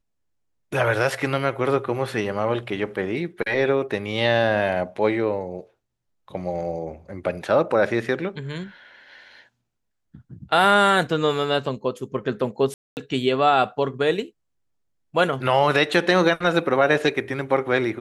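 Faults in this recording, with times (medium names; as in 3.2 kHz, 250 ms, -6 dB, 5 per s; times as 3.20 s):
12.74–12.97 s: dropout 229 ms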